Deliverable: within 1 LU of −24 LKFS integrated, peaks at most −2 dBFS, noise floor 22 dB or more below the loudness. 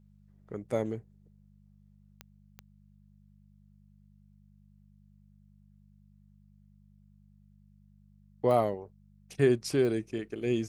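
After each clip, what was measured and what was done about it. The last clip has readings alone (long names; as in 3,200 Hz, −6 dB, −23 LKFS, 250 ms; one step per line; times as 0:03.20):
number of clicks 4; mains hum 50 Hz; hum harmonics up to 200 Hz; level of the hum −57 dBFS; integrated loudness −30.5 LKFS; sample peak −13.0 dBFS; target loudness −24.0 LKFS
→ click removal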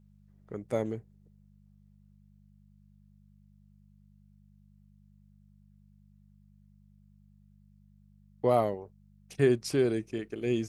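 number of clicks 0; mains hum 50 Hz; hum harmonics up to 200 Hz; level of the hum −57 dBFS
→ hum removal 50 Hz, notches 4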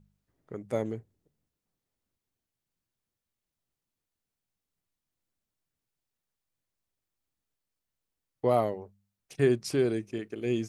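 mains hum none found; integrated loudness −29.5 LKFS; sample peak −12.5 dBFS; target loudness −24.0 LKFS
→ level +5.5 dB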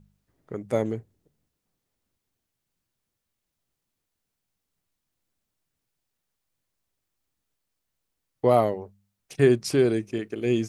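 integrated loudness −24.0 LKFS; sample peak −7.0 dBFS; background noise floor −83 dBFS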